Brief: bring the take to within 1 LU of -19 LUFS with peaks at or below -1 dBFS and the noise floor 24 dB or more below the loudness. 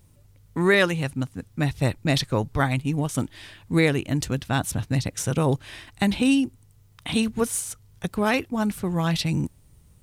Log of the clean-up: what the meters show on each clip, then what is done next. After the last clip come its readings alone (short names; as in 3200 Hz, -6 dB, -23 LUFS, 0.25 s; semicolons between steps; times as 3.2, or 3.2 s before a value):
loudness -24.5 LUFS; peak -7.5 dBFS; loudness target -19.0 LUFS
-> gain +5.5 dB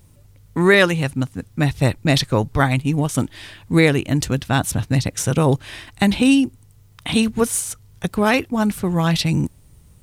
loudness -19.0 LUFS; peak -2.0 dBFS; noise floor -50 dBFS